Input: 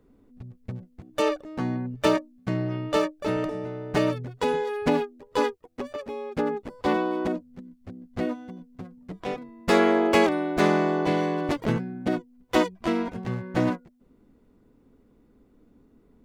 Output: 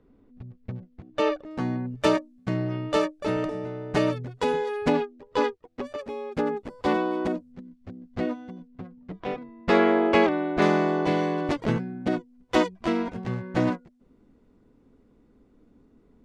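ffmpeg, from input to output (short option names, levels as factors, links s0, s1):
-af "asetnsamples=n=441:p=0,asendcmd='1.51 lowpass f 9600;4.92 lowpass f 5200;5.83 lowpass f 10000;7.52 lowpass f 5900;8.68 lowpass f 3600;10.62 lowpass f 7900',lowpass=4100"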